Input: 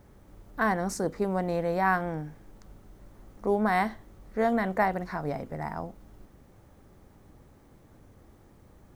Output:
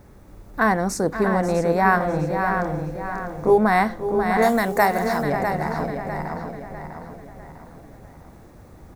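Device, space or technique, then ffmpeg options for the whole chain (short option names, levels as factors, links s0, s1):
ducked delay: -filter_complex "[0:a]asettb=1/sr,asplit=3[s0][s1][s2];[s0]atrim=end=1.984[s3];[s1]atrim=start=1.98:end=3.58,asetpts=PTS-STARTPTS,afade=t=in:d=0.004:c=qsin,afade=t=out:st=1.596:d=0.004:c=qsin,asplit=2[s4][s5];[s5]adelay=27,volume=0.794[s6];[s4][s6]amix=inputs=2:normalize=0,atrim=end_sample=70560[s7];[s2]atrim=start=3.576[s8];[s3][s7]acrossfade=d=0.004:c1=hsin:c2=qsin[s9];[s9][s8]acrossfade=d=0.004:c1=qsin:c2=hsin,bandreject=f=3100:w=9.8,asplit=3[s10][s11][s12];[s11]adelay=537,volume=0.668[s13];[s12]apad=whole_len=418786[s14];[s13][s14]sidechaincompress=threshold=0.0251:ratio=8:attack=16:release=661[s15];[s10][s15]amix=inputs=2:normalize=0,asettb=1/sr,asplit=3[s16][s17][s18];[s16]atrim=end=4.424[s19];[s17]atrim=start=4.42:end=5.23,asetpts=PTS-STARTPTS,afade=t=in:d=0.004:c=qsin,afade=t=out:st=0.806:d=0.004:c=qsin,bass=f=250:g=-4,treble=f=4000:g=15[s20];[s18]atrim=start=5.226[s21];[s19][s20]acrossfade=d=0.004:c1=hsin:c2=qsin[s22];[s22][s21]acrossfade=d=0.004:c1=qsin:c2=hsin,asplit=2[s23][s24];[s24]adelay=650,lowpass=f=5000:p=1,volume=0.447,asplit=2[s25][s26];[s26]adelay=650,lowpass=f=5000:p=1,volume=0.43,asplit=2[s27][s28];[s28]adelay=650,lowpass=f=5000:p=1,volume=0.43,asplit=2[s29][s30];[s30]adelay=650,lowpass=f=5000:p=1,volume=0.43,asplit=2[s31][s32];[s32]adelay=650,lowpass=f=5000:p=1,volume=0.43[s33];[s23][s25][s27][s29][s31][s33]amix=inputs=6:normalize=0,volume=2.24"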